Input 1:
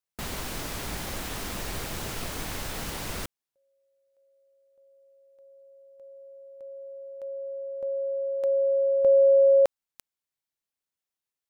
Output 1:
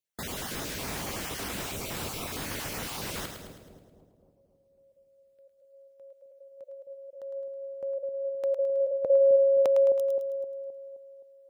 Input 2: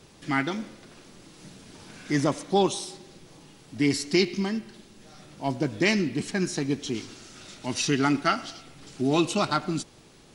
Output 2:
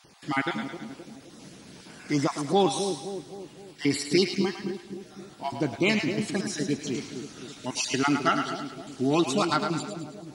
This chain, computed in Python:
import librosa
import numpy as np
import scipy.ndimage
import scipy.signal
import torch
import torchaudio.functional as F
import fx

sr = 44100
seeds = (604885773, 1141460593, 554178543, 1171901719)

y = fx.spec_dropout(x, sr, seeds[0], share_pct=21)
y = fx.highpass(y, sr, hz=100.0, slope=6)
y = fx.echo_split(y, sr, split_hz=670.0, low_ms=261, high_ms=107, feedback_pct=52, wet_db=-7)